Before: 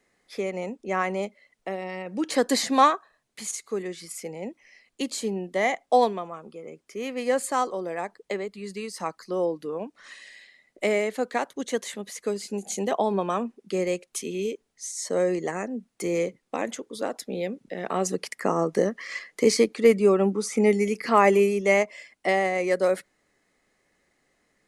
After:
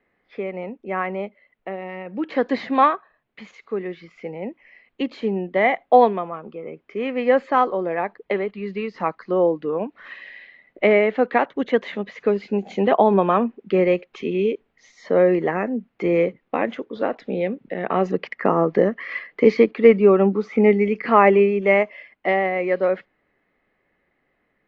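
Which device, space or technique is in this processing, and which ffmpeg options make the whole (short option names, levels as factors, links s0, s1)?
action camera in a waterproof case: -af "lowpass=f=2800:w=0.5412,lowpass=f=2800:w=1.3066,dynaudnorm=f=980:g=9:m=2.99,volume=1.12" -ar 16000 -c:a aac -b:a 48k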